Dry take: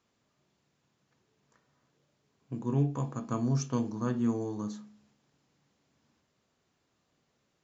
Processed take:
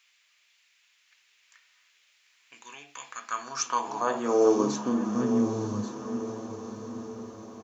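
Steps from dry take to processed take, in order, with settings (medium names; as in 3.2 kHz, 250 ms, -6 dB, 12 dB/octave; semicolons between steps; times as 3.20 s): in parallel at +2 dB: peak limiter -27 dBFS, peak gain reduction 10 dB; on the sum: delay 1136 ms -9.5 dB; high-pass sweep 2.3 kHz -> 77 Hz, 3.01–6.07 s; echo that smears into a reverb 913 ms, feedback 57%, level -10 dB; trim +4.5 dB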